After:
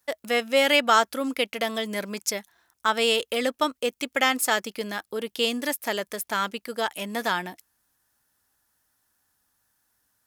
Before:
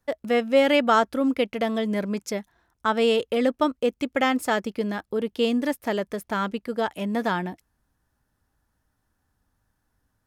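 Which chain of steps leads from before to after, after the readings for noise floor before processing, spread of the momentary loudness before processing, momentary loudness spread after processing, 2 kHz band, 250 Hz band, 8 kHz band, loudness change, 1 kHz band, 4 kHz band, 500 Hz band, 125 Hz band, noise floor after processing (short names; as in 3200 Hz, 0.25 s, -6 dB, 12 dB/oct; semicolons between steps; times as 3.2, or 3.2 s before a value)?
-75 dBFS, 10 LU, 10 LU, +3.0 dB, -7.0 dB, +10.5 dB, -1.0 dB, 0.0 dB, +6.0 dB, -3.5 dB, n/a, -76 dBFS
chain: tilt +3.5 dB/oct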